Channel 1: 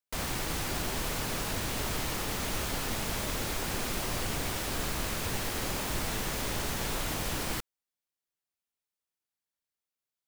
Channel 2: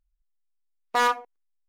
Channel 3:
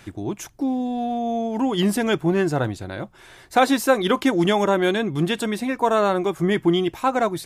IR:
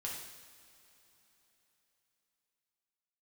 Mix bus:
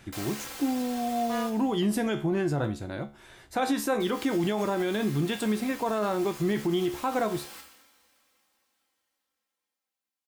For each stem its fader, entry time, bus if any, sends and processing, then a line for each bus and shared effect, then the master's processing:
+0.5 dB, 0.00 s, muted 1.5–4, send -8 dB, HPF 710 Hz 6 dB/oct; comb 3.8 ms, depth 75%; auto duck -16 dB, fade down 1.70 s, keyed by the third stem
-9.0 dB, 0.35 s, no send, dry
-0.5 dB, 0.00 s, no send, low shelf 420 Hz +4 dB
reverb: on, pre-delay 3 ms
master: resonator 71 Hz, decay 0.31 s, harmonics all, mix 70%; limiter -18.5 dBFS, peak gain reduction 9 dB

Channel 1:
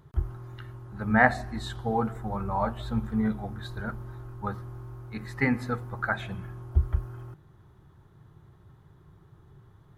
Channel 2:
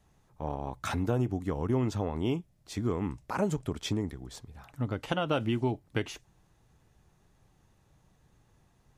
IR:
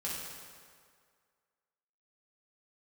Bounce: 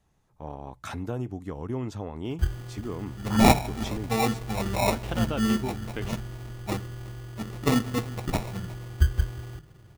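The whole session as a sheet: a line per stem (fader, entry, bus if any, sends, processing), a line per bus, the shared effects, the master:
+2.5 dB, 2.25 s, no send, echo send -22.5 dB, sample-and-hold 28×
-3.5 dB, 0.00 s, no send, no echo send, dry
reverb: off
echo: echo 0.36 s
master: dry

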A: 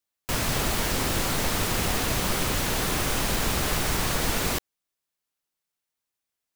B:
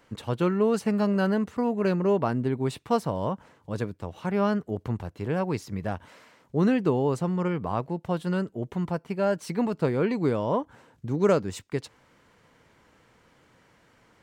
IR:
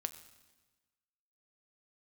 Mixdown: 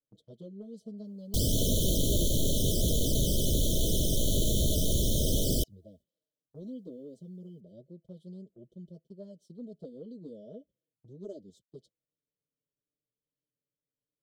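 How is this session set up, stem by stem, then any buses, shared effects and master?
+1.0 dB, 1.05 s, no send, low shelf 99 Hz +8 dB; vocal rider within 3 dB 2 s; wavefolder -20 dBFS
-16.5 dB, 0.00 s, no send, high shelf 5200 Hz -8.5 dB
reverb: off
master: FFT band-reject 660–3000 Hz; gate -55 dBFS, range -16 dB; envelope flanger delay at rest 6.9 ms, full sweep at -21.5 dBFS

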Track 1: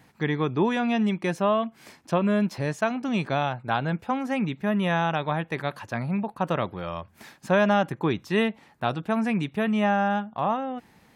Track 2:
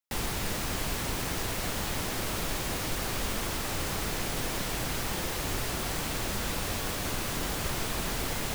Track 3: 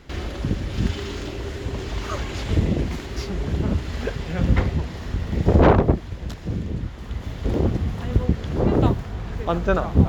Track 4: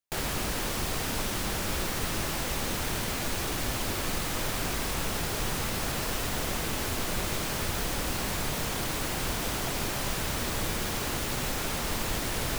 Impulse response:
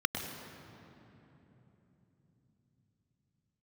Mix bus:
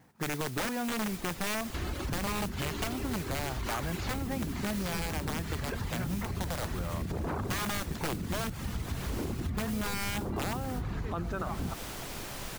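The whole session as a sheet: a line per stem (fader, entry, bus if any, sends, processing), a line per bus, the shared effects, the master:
-3.5 dB, 0.00 s, muted 8.5–9.54, no bus, no send, median filter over 15 samples; wrapped overs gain 18.5 dB; modulation noise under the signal 12 dB
-9.0 dB, 0.95 s, bus A, no send, dry
+0.5 dB, 1.65 s, bus A, send -21 dB, bell 500 Hz -6.5 dB 0.77 oct; limiter -15.5 dBFS, peak gain reduction 11 dB
-9.0 dB, 2.35 s, no bus, no send, auto duck -19 dB, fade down 0.30 s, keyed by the first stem
bus A: 0.0 dB, reverb removal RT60 0.63 s; limiter -22.5 dBFS, peak gain reduction 7.5 dB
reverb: on, RT60 3.5 s, pre-delay 98 ms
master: compressor, threshold -30 dBFS, peak gain reduction 8.5 dB

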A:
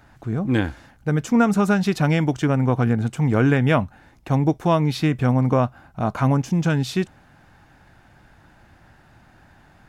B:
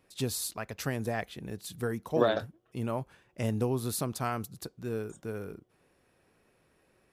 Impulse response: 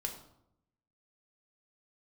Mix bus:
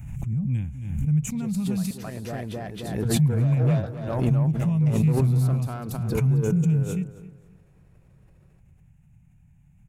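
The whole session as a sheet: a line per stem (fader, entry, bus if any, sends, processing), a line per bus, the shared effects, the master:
-7.0 dB, 0.00 s, muted 1.91–3.05, no send, echo send -17 dB, EQ curve 100 Hz 0 dB, 160 Hz +4 dB, 360 Hz -27 dB, 950 Hz -21 dB, 1600 Hz -24 dB, 2400 Hz -4 dB, 4600 Hz -25 dB, 6800 Hz +1 dB
0.0 dB, 1.20 s, no send, echo send -3.5 dB, soft clip -27 dBFS, distortion -10 dB; auto duck -12 dB, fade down 0.50 s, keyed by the first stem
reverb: off
echo: feedback echo 0.267 s, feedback 28%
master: tilt shelf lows +4.5 dB, about 1400 Hz; backwards sustainer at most 44 dB/s

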